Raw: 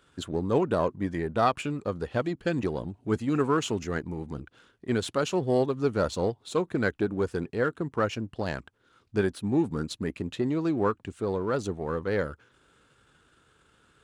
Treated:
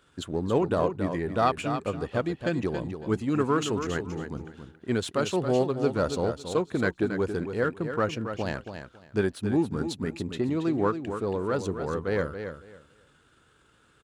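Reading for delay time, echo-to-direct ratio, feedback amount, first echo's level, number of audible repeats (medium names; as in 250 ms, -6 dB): 276 ms, -8.5 dB, 20%, -8.5 dB, 2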